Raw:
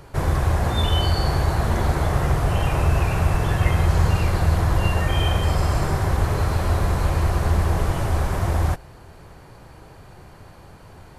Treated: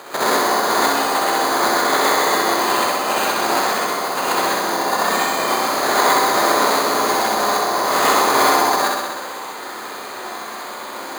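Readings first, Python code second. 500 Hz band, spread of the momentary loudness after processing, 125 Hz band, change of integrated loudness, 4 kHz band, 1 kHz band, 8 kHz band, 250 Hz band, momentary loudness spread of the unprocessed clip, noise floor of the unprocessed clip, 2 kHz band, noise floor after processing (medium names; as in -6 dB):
+8.5 dB, 15 LU, -23.5 dB, +4.5 dB, +10.0 dB, +12.0 dB, +14.5 dB, +2.5 dB, 3 LU, -45 dBFS, +11.0 dB, -31 dBFS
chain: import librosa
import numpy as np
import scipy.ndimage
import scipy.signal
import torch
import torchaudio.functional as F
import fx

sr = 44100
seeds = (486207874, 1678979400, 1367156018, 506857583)

y = fx.spec_clip(x, sr, under_db=21)
y = fx.over_compress(y, sr, threshold_db=-24.0, ratio=-0.5)
y = scipy.signal.sosfilt(scipy.signal.butter(2, 2000.0, 'lowpass', fs=sr, output='sos'), y)
y = fx.rev_gated(y, sr, seeds[0], gate_ms=150, shape='rising', drr_db=-5.0)
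y = np.repeat(y[::8], 8)[:len(y)]
y = scipy.signal.sosfilt(scipy.signal.butter(2, 380.0, 'highpass', fs=sr, output='sos'), y)
y = fx.room_flutter(y, sr, wall_m=11.1, rt60_s=1.3)
y = y * 10.0 ** (1.5 / 20.0)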